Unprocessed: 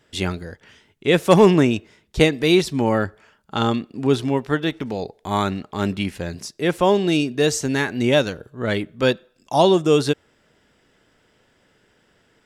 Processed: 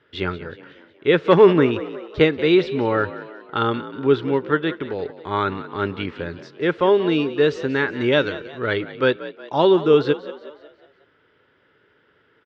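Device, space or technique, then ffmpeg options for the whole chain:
frequency-shifting delay pedal into a guitar cabinet: -filter_complex "[0:a]asettb=1/sr,asplit=3[a][b][c];[a]atrim=end=7.924[d];[b]atrim=start=7.92:end=8.93,asetpts=PTS-STARTPTS,afade=t=in:d=0.004:c=qsin,afade=t=out:st=1.006:d=0.004:c=qsin,equalizer=f=7.3k:w=0.5:g=4.5[e];[c]atrim=start=8.926[f];[d][e]acrossfade=d=0.004:c1=hsin:c2=qsin[g];[g][f]acrossfade=d=0.004:c1=qsin:c2=hsin,asplit=6[h][i][j][k][l][m];[i]adelay=183,afreqshift=51,volume=-15dB[n];[j]adelay=366,afreqshift=102,volume=-21dB[o];[k]adelay=549,afreqshift=153,volume=-27dB[p];[l]adelay=732,afreqshift=204,volume=-33.1dB[q];[m]adelay=915,afreqshift=255,volume=-39.1dB[r];[h][n][o][p][q][r]amix=inputs=6:normalize=0,highpass=90,equalizer=f=130:t=q:w=4:g=-3,equalizer=f=210:t=q:w=4:g=-10,equalizer=f=420:t=q:w=4:g=4,equalizer=f=710:t=q:w=4:g=-8,equalizer=f=1.4k:t=q:w=4:g=6,equalizer=f=2.6k:t=q:w=4:g=-3,lowpass=f=3.5k:w=0.5412,lowpass=f=3.5k:w=1.3066"

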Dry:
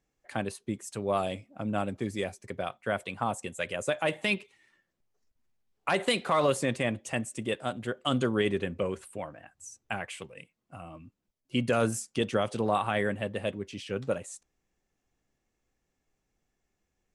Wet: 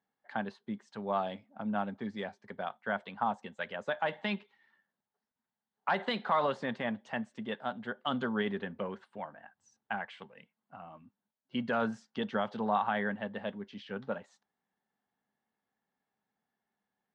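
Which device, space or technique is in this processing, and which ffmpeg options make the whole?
kitchen radio: -af "highpass=210,equalizer=f=210:t=q:w=4:g=7,equalizer=f=330:t=q:w=4:g=-10,equalizer=f=520:t=q:w=4:g=-4,equalizer=f=870:t=q:w=4:g=8,equalizer=f=1.6k:t=q:w=4:g=5,equalizer=f=2.5k:t=q:w=4:g=-9,lowpass=f=4k:w=0.5412,lowpass=f=4k:w=1.3066,volume=-4dB"

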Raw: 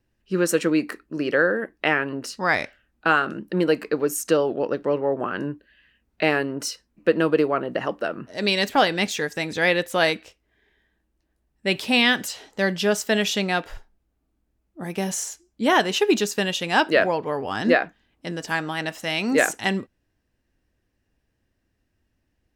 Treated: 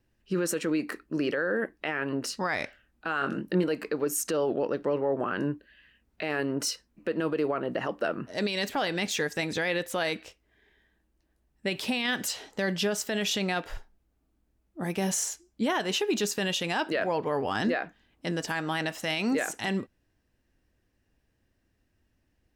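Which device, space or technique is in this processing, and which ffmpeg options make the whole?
stacked limiters: -filter_complex "[0:a]alimiter=limit=-10.5dB:level=0:latency=1:release=226,alimiter=limit=-16dB:level=0:latency=1:release=170,alimiter=limit=-19dB:level=0:latency=1:release=10,asettb=1/sr,asplit=3[a][b][c];[a]atrim=end=3.194[d];[b]atrim=start=3.19:end=3.64,asetpts=PTS-STARTPTS,afade=t=in:d=0.004:c=qsin,afade=t=out:st=0.446:d=0.004:c=qsin,asplit=2[e][f];[f]adelay=22,volume=-5.5dB[g];[e][g]amix=inputs=2:normalize=0,atrim=end_sample=19845[h];[c]atrim=start=3.636[i];[d][h]acrossfade=d=0.004:c1=hsin:c2=qsin[j];[j][i]acrossfade=d=0.004:c1=qsin:c2=hsin"

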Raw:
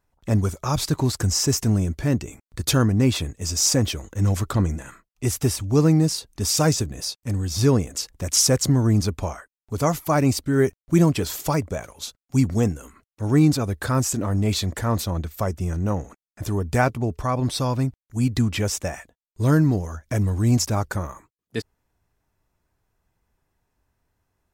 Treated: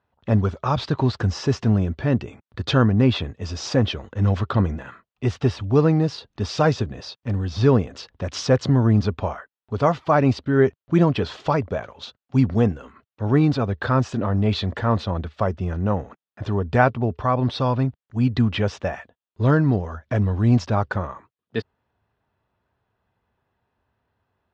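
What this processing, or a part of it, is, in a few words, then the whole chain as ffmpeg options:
guitar cabinet: -af "highpass=97,equalizer=f=160:t=q:w=4:g=-5,equalizer=f=310:t=q:w=4:g=-6,equalizer=f=2.2k:t=q:w=4:g=-6,lowpass=f=3.6k:w=0.5412,lowpass=f=3.6k:w=1.3066,volume=4dB"

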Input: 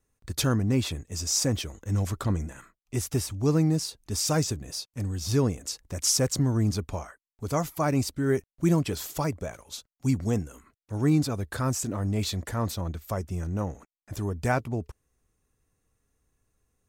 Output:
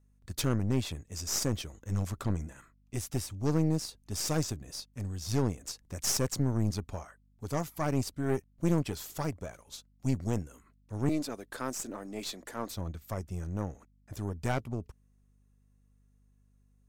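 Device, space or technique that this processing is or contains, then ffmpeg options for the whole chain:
valve amplifier with mains hum: -filter_complex "[0:a]asettb=1/sr,asplit=3[a][b][c];[a]atrim=end=11.094[d];[b]atrim=start=11.09:end=12.7,asetpts=PTS-STARTPTS,afade=t=in:d=0.004:c=qsin,afade=t=out:st=1.606:d=0.004:c=qsin,highpass=f=240:w=0.5412,highpass=f=240:w=1.3066[e];[c]atrim=start=12.696[f];[d][e]acrossfade=d=0.004:c1=hsin:c2=qsin[g];[g][f]acrossfade=d=0.004:c1=qsin:c2=hsin,aeval=exprs='(tanh(8.91*val(0)+0.8)-tanh(0.8))/8.91':c=same,aeval=exprs='val(0)+0.000708*(sin(2*PI*50*n/s)+sin(2*PI*2*50*n/s)/2+sin(2*PI*3*50*n/s)/3+sin(2*PI*4*50*n/s)/4+sin(2*PI*5*50*n/s)/5)':c=same,volume=-1.5dB"

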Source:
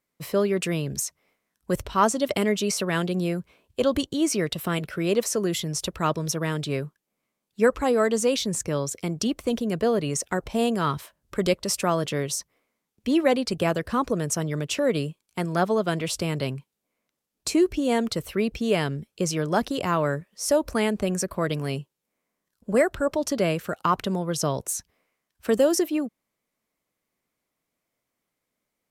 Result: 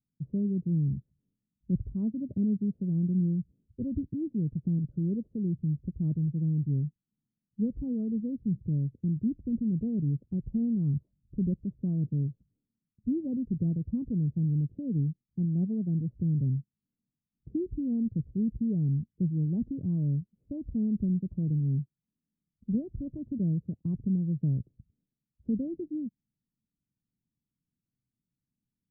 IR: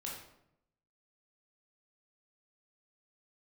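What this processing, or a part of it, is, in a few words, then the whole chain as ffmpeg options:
the neighbour's flat through the wall: -af "lowpass=f=240:w=0.5412,lowpass=f=240:w=1.3066,equalizer=f=120:t=o:w=0.82:g=5.5"

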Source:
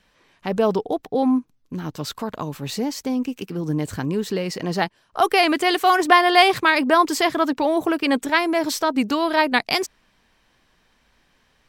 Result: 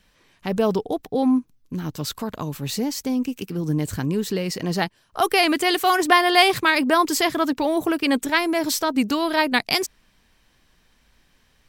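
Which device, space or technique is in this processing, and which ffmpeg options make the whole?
smiley-face EQ: -af "lowshelf=f=120:g=5.5,equalizer=f=820:t=o:w=2.1:g=-3,highshelf=f=8k:g=7.5"

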